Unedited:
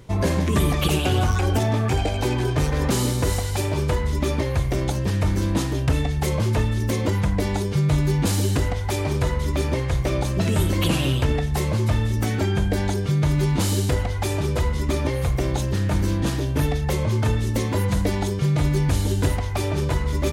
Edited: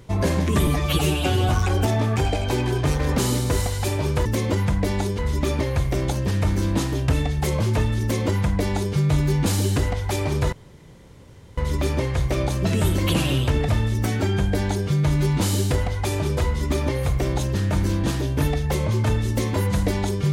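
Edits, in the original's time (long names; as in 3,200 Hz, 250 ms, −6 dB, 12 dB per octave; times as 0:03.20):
0:00.67–0:01.22: time-stretch 1.5×
0:06.81–0:07.74: duplicate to 0:03.98
0:09.32: splice in room tone 1.05 s
0:11.43–0:11.87: remove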